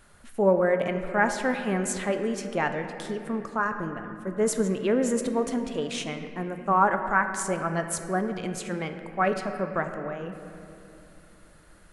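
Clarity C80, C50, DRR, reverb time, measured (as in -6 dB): 8.5 dB, 7.5 dB, 6.0 dB, 2.8 s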